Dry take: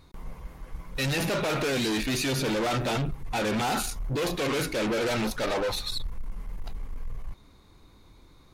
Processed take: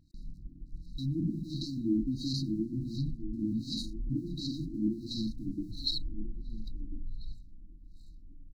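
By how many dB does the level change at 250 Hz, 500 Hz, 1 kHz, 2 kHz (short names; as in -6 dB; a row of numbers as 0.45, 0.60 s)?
-1.5 dB, -17.5 dB, under -40 dB, under -40 dB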